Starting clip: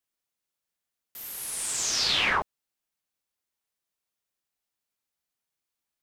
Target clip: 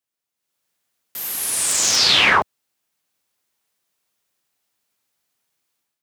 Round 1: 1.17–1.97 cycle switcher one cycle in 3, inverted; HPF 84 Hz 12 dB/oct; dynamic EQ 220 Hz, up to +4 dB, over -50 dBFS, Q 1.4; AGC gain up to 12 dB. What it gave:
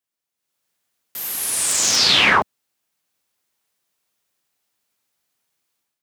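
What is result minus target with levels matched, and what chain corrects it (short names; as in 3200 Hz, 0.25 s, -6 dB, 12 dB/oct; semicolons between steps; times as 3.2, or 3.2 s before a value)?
250 Hz band +2.5 dB
1.17–1.97 cycle switcher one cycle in 3, inverted; HPF 84 Hz 12 dB/oct; AGC gain up to 12 dB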